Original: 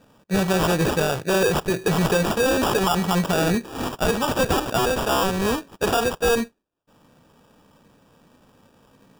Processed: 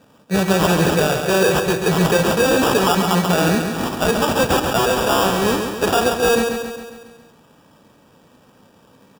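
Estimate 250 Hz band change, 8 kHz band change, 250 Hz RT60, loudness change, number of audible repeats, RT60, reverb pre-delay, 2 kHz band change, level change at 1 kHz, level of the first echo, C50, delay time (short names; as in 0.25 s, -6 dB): +4.5 dB, +5.0 dB, none, +4.5 dB, 6, none, none, +5.0 dB, +4.5 dB, -6.0 dB, none, 0.136 s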